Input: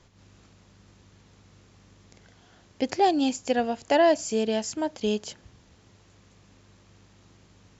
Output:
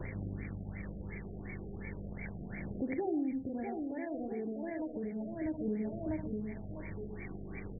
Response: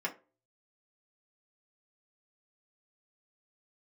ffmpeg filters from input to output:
-filter_complex "[0:a]tiltshelf=f=970:g=4.5,asplit=2[s0][s1];[s1]acrusher=bits=6:dc=4:mix=0:aa=0.000001,volume=0.473[s2];[s0][s2]amix=inputs=2:normalize=0,aecho=1:1:646|1292|1938:0.501|0.11|0.0243,alimiter=level_in=1.68:limit=0.0631:level=0:latency=1:release=245,volume=0.596,highshelf=f=1700:t=q:w=3:g=11.5,acrossover=split=390[s3][s4];[s4]acompressor=threshold=0.00891:ratio=6[s5];[s3][s5]amix=inputs=2:normalize=0,asplit=2[s6][s7];[1:a]atrim=start_sample=2205,adelay=68[s8];[s7][s8]afir=irnorm=-1:irlink=0,volume=0.376[s9];[s6][s9]amix=inputs=2:normalize=0,acompressor=threshold=0.00282:ratio=3,aphaser=in_gain=1:out_gain=1:delay=2.7:decay=0.32:speed=0.34:type=sinusoidal,afftfilt=real='re*lt(b*sr/1024,740*pow(2400/740,0.5+0.5*sin(2*PI*2.8*pts/sr)))':imag='im*lt(b*sr/1024,740*pow(2400/740,0.5+0.5*sin(2*PI*2.8*pts/sr)))':win_size=1024:overlap=0.75,volume=4.22"

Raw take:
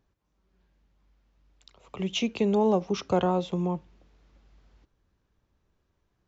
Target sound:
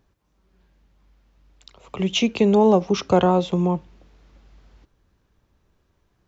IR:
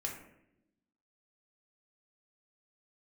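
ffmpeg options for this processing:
-af "volume=2.37"

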